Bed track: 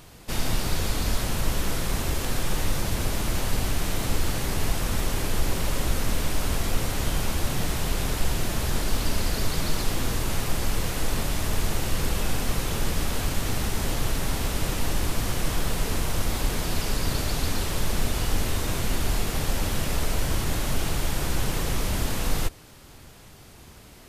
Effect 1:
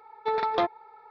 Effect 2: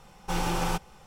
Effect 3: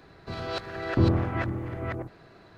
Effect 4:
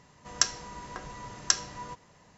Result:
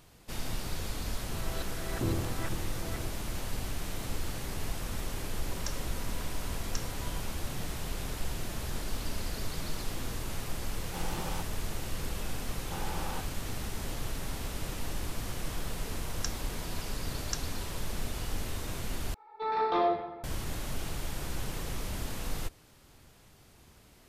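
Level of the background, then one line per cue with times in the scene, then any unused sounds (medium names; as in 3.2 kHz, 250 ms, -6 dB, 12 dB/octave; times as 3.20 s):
bed track -10 dB
1.04 s: add 3 -10 dB
5.25 s: add 4 -10 dB + peak limiter -12 dBFS
10.65 s: add 2 -10.5 dB
12.43 s: add 2 -15 dB + overdrive pedal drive 19 dB, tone 1.2 kHz, clips at -14.5 dBFS
15.83 s: add 4 -13 dB
19.14 s: replace with 1 -12 dB + simulated room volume 500 m³, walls mixed, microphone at 3.7 m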